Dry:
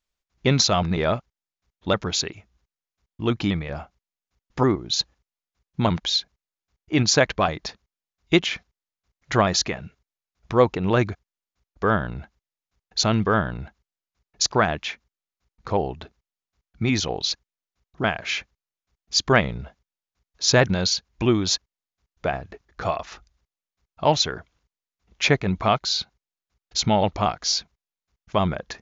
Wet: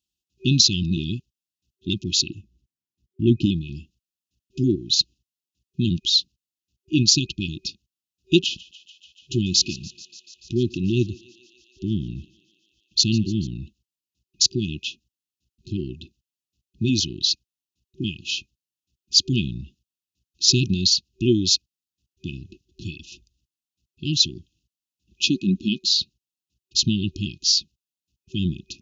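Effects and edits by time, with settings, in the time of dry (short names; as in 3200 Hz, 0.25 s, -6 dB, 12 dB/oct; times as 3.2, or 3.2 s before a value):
2.28–3.46 tilt shelf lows +6 dB
8.42–13.48 thinning echo 0.145 s, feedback 82%, high-pass 440 Hz, level -19 dB
25.28–25.95 resonant low shelf 160 Hz -8.5 dB, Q 3
whole clip: FFT band-reject 380–2500 Hz; HPF 71 Hz; dynamic EQ 4600 Hz, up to +4 dB, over -35 dBFS, Q 2.2; gain +1.5 dB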